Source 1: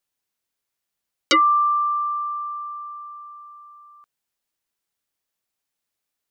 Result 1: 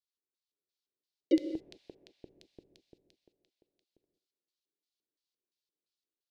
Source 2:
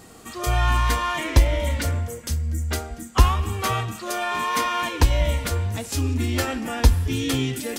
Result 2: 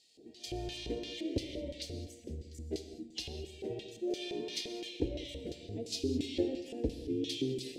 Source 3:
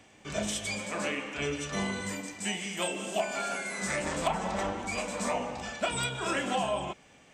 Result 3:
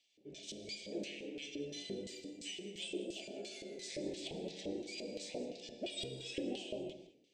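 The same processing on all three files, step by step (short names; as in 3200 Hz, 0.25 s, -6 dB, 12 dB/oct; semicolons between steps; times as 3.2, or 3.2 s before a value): high shelf 4100 Hz -7.5 dB; AGC gain up to 6 dB; LFO band-pass square 2.9 Hz 370–4300 Hz; Butterworth band-stop 1200 Hz, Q 0.57; bell 230 Hz -3 dB 0.34 oct; non-linear reverb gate 0.23 s flat, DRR 9 dB; gain -3.5 dB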